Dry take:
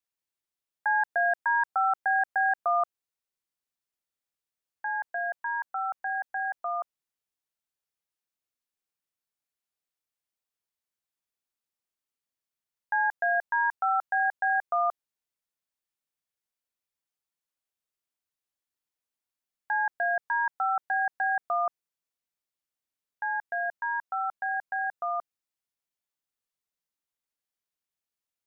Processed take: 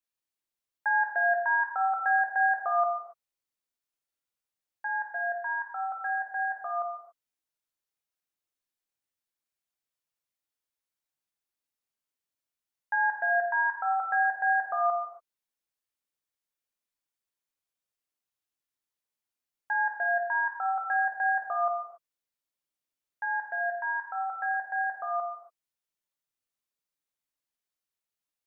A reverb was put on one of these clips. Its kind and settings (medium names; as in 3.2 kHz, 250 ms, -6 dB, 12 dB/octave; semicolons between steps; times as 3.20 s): gated-style reverb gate 310 ms falling, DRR 0.5 dB; trim -3.5 dB